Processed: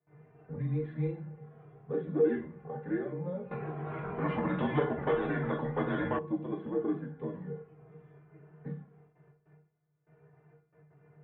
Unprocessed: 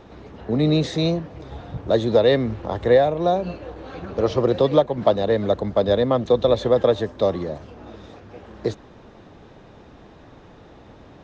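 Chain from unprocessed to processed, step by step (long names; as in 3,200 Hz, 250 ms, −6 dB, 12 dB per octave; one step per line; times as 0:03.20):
noise gate with hold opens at −36 dBFS
tuned comb filter 320 Hz, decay 0.28 s, harmonics all, mix 90%
flanger swept by the level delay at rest 3.6 ms, full sweep at −12.5 dBFS
rectangular room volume 39 cubic metres, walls mixed, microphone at 0.45 metres
single-sideband voice off tune −170 Hz 320–2,300 Hz
0:03.51–0:06.19: every bin compressed towards the loudest bin 2 to 1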